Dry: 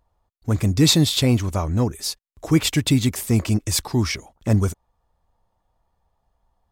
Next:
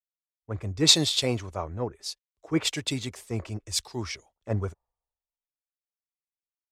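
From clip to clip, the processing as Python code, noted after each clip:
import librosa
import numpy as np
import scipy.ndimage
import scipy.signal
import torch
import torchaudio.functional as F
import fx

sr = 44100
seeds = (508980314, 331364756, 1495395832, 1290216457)

y = scipy.signal.sosfilt(scipy.signal.butter(2, 8000.0, 'lowpass', fs=sr, output='sos'), x)
y = fx.low_shelf_res(y, sr, hz=330.0, db=-6.5, q=1.5)
y = fx.band_widen(y, sr, depth_pct=100)
y = F.gain(torch.from_numpy(y), -7.0).numpy()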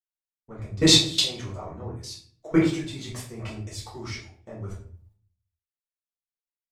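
y = fx.level_steps(x, sr, step_db=23)
y = fx.room_shoebox(y, sr, seeds[0], volume_m3=53.0, walls='mixed', distance_m=1.6)
y = F.gain(torch.from_numpy(y), 1.5).numpy()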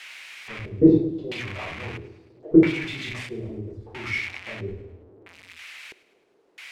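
y = x + 0.5 * 10.0 ** (-17.5 / 20.0) * np.diff(np.sign(x), prepend=np.sign(x[:1]))
y = fx.filter_lfo_lowpass(y, sr, shape='square', hz=0.76, low_hz=400.0, high_hz=2300.0, q=3.6)
y = fx.echo_feedback(y, sr, ms=106, feedback_pct=52, wet_db=-19.0)
y = F.gain(torch.from_numpy(y), -1.0).numpy()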